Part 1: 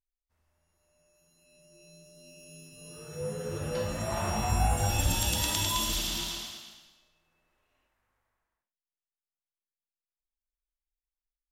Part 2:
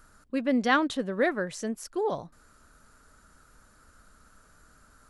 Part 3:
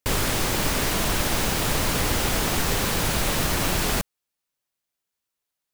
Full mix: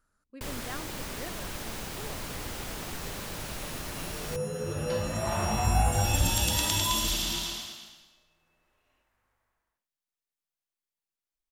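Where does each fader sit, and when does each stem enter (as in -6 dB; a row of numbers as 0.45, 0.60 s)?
+2.0, -18.0, -14.0 dB; 1.15, 0.00, 0.35 s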